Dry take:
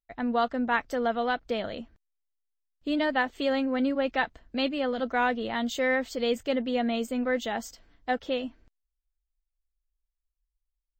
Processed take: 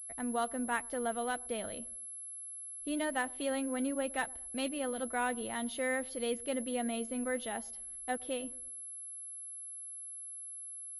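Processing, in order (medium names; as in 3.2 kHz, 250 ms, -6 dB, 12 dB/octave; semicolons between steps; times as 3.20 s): feedback echo behind a low-pass 113 ms, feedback 37%, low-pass 890 Hz, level -21 dB; class-D stage that switches slowly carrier 11 kHz; trim -8 dB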